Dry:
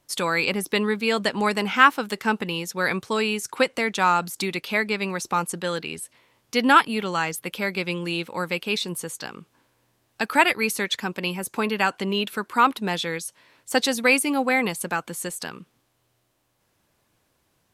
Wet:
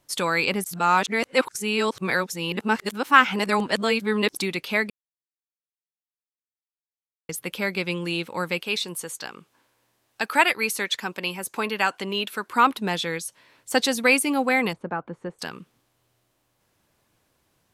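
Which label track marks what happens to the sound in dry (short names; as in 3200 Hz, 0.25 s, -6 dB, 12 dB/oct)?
0.640000	4.370000	reverse
4.900000	7.290000	mute
8.610000	12.490000	low shelf 280 Hz -9 dB
14.730000	15.390000	LPF 1100 Hz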